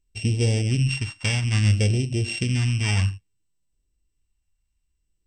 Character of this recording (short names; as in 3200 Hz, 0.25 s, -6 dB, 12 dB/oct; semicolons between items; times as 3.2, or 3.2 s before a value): a buzz of ramps at a fixed pitch in blocks of 16 samples; phasing stages 2, 0.6 Hz, lowest notch 420–1200 Hz; MP2